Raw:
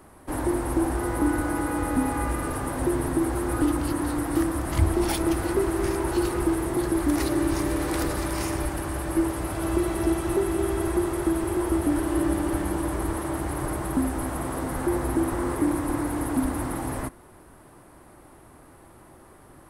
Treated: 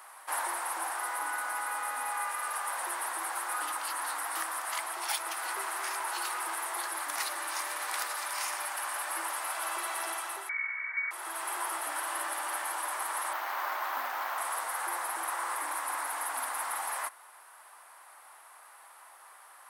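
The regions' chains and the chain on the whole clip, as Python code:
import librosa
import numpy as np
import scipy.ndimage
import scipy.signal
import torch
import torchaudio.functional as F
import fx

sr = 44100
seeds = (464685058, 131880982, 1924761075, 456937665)

y = fx.chain(x, sr, fx.highpass(hz=350.0, slope=24),
    fx.freq_invert(carrier_hz=2600),
    fx.tilt_eq(slope=1.5), at=(10.49, 11.11))
y = fx.chain(y, sr, fx.bandpass_edges(low_hz=190.0, high_hz=6800.0),
    fx.resample_bad(factor=3, down='filtered', up='hold'), at=(13.33, 14.38))
y = scipy.signal.sosfilt(scipy.signal.butter(4, 860.0, 'highpass', fs=sr, output='sos'), y)
y = fx.rider(y, sr, range_db=10, speed_s=0.5)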